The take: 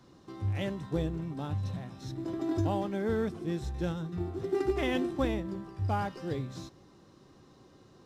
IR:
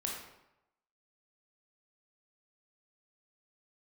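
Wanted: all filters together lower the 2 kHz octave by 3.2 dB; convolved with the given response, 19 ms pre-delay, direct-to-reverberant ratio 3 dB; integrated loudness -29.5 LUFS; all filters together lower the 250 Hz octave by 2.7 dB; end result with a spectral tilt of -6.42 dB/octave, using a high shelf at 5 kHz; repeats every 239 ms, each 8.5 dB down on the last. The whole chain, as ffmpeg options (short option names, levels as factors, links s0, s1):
-filter_complex "[0:a]equalizer=f=250:t=o:g=-4,equalizer=f=2000:t=o:g=-4.5,highshelf=f=5000:g=3.5,aecho=1:1:239|478|717|956:0.376|0.143|0.0543|0.0206,asplit=2[s0][s1];[1:a]atrim=start_sample=2205,adelay=19[s2];[s1][s2]afir=irnorm=-1:irlink=0,volume=0.562[s3];[s0][s3]amix=inputs=2:normalize=0,volume=1.5"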